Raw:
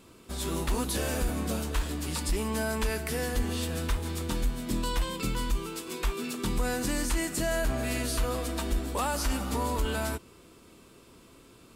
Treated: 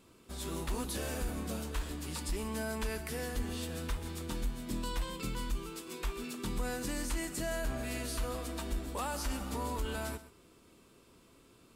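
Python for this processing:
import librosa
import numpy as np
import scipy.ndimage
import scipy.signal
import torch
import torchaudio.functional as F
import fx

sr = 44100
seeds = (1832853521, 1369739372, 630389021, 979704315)

y = x + 10.0 ** (-15.5 / 20.0) * np.pad(x, (int(127 * sr / 1000.0), 0))[:len(x)]
y = y * 10.0 ** (-7.0 / 20.0)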